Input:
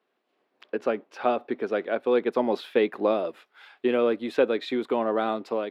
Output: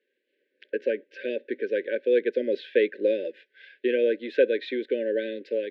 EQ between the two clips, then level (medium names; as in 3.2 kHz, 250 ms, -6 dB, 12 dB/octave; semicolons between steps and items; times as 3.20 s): high-pass 440 Hz 12 dB/octave; brick-wall FIR band-stop 590–1500 Hz; distance through air 260 m; +4.5 dB